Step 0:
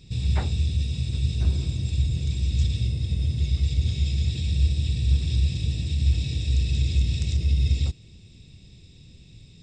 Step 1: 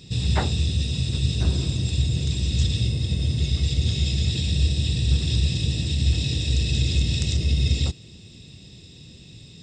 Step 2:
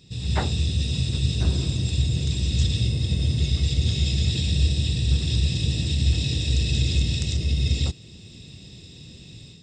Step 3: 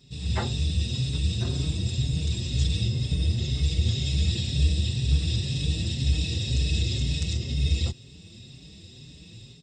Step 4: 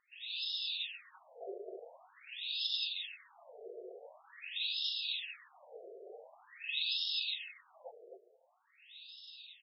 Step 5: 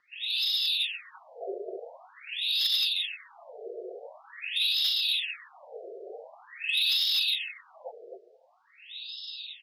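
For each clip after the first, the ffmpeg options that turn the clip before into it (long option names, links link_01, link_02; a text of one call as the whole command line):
ffmpeg -i in.wav -af "highpass=frequency=180:poles=1,bandreject=frequency=2300:width=8.6,volume=8.5dB" out.wav
ffmpeg -i in.wav -af "dynaudnorm=framelen=190:gausssize=3:maxgain=9dB,volume=-7.5dB" out.wav
ffmpeg -i in.wav -filter_complex "[0:a]asplit=2[link_01][link_02];[link_02]adelay=5.2,afreqshift=2[link_03];[link_01][link_03]amix=inputs=2:normalize=1" out.wav
ffmpeg -i in.wav -af "aecho=1:1:259:0.501,afftfilt=real='re*between(b*sr/1024,500*pow(3900/500,0.5+0.5*sin(2*PI*0.46*pts/sr))/1.41,500*pow(3900/500,0.5+0.5*sin(2*PI*0.46*pts/sr))*1.41)':imag='im*between(b*sr/1024,500*pow(3900/500,0.5+0.5*sin(2*PI*0.46*pts/sr))/1.41,500*pow(3900/500,0.5+0.5*sin(2*PI*0.46*pts/sr))*1.41)':win_size=1024:overlap=0.75" out.wav
ffmpeg -i in.wav -filter_complex "[0:a]lowpass=frequency=4800:width_type=q:width=1.7,acrossover=split=440|1200|2400[link_01][link_02][link_03][link_04];[link_04]asoftclip=type=tanh:threshold=-31.5dB[link_05];[link_01][link_02][link_03][link_05]amix=inputs=4:normalize=0,volume=8.5dB" out.wav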